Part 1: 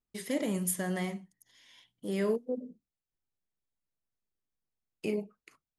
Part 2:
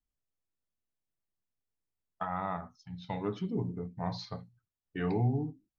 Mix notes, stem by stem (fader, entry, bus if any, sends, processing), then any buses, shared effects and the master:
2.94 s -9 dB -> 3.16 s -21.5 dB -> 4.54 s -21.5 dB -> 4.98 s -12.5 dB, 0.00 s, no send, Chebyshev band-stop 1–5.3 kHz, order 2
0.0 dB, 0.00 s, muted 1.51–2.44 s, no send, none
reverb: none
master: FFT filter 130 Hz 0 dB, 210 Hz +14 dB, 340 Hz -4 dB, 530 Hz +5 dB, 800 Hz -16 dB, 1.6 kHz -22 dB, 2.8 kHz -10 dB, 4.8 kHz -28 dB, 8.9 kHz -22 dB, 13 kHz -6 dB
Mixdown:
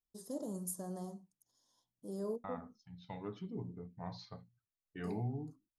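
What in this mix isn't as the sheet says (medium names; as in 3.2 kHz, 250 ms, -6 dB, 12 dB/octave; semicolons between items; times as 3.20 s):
stem 2 0.0 dB -> -9.5 dB; master: missing FFT filter 130 Hz 0 dB, 210 Hz +14 dB, 340 Hz -4 dB, 530 Hz +5 dB, 800 Hz -16 dB, 1.6 kHz -22 dB, 2.8 kHz -10 dB, 4.8 kHz -28 dB, 8.9 kHz -22 dB, 13 kHz -6 dB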